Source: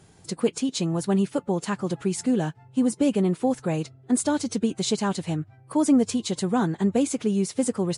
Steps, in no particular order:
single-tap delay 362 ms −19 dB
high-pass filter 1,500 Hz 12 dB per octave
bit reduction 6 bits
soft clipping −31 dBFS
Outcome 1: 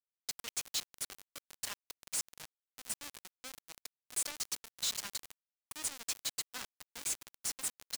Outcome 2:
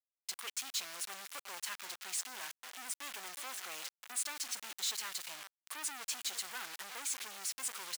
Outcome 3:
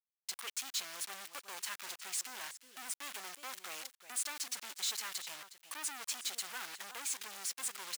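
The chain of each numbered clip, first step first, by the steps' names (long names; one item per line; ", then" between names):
single-tap delay, then soft clipping, then high-pass filter, then bit reduction
single-tap delay, then bit reduction, then soft clipping, then high-pass filter
bit reduction, then single-tap delay, then soft clipping, then high-pass filter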